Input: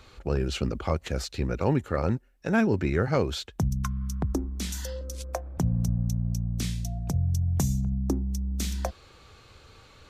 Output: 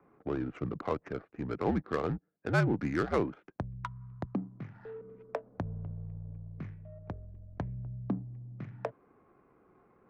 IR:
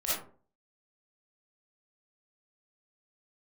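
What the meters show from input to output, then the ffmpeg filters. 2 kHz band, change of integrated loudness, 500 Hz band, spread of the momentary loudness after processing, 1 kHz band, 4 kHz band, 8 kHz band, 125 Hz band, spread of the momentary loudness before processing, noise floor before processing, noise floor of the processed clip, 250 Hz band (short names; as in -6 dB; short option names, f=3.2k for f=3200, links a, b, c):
-3.5 dB, -7.5 dB, -5.0 dB, 15 LU, -3.5 dB, -16.0 dB, under -20 dB, -10.0 dB, 8 LU, -54 dBFS, -67 dBFS, -6.5 dB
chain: -af "equalizer=f=420:w=0.46:g=-3.5,highpass=f=210:t=q:w=0.5412,highpass=f=210:t=q:w=1.307,lowpass=f=2.4k:t=q:w=0.5176,lowpass=f=2.4k:t=q:w=0.7071,lowpass=f=2.4k:t=q:w=1.932,afreqshift=-75,adynamicsmooth=sensitivity=4:basefreq=750"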